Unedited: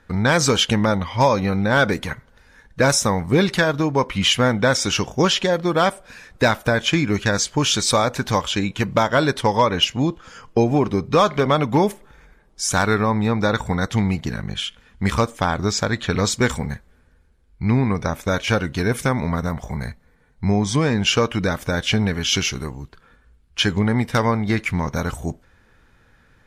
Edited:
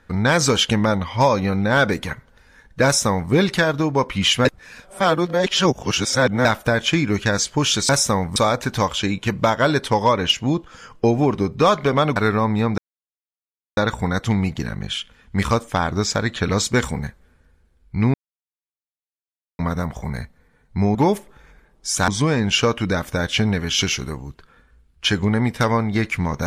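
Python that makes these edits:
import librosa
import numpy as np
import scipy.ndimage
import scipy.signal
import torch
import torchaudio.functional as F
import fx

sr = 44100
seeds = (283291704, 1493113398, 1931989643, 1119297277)

y = fx.edit(x, sr, fx.duplicate(start_s=2.85, length_s=0.47, to_s=7.89),
    fx.reverse_span(start_s=4.45, length_s=2.0),
    fx.move(start_s=11.69, length_s=1.13, to_s=20.62),
    fx.insert_silence(at_s=13.44, length_s=0.99),
    fx.silence(start_s=17.81, length_s=1.45), tone=tone)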